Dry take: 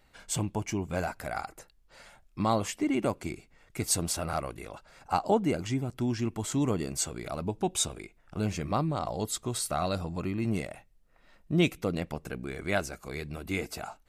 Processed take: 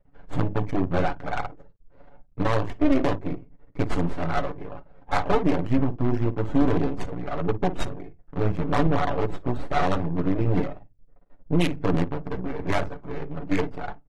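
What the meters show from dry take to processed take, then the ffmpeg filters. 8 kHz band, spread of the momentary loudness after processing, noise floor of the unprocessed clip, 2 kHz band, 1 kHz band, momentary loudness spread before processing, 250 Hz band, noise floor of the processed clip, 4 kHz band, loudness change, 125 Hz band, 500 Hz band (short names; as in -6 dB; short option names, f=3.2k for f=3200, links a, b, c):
under -15 dB, 12 LU, -63 dBFS, +4.0 dB, +5.0 dB, 12 LU, +6.0 dB, -55 dBFS, -2.0 dB, +4.5 dB, +6.0 dB, +5.5 dB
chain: -af "bandreject=f=50:t=h:w=6,bandreject=f=100:t=h:w=6,bandreject=f=150:t=h:w=6,bandreject=f=200:t=h:w=6,bandreject=f=250:t=h:w=6,aecho=1:1:7:0.95,aeval=exprs='max(val(0),0)':c=same,aecho=1:1:11|54:0.531|0.237,adynamicsmooth=sensitivity=2.5:basefreq=550,alimiter=limit=-19dB:level=0:latency=1:release=69,adynamicequalizer=threshold=0.00501:dfrequency=330:dqfactor=3.2:tfrequency=330:tqfactor=3.2:attack=5:release=100:ratio=0.375:range=2:mode=boostabove:tftype=bell,volume=8.5dB" -ar 48000 -c:a aac -b:a 32k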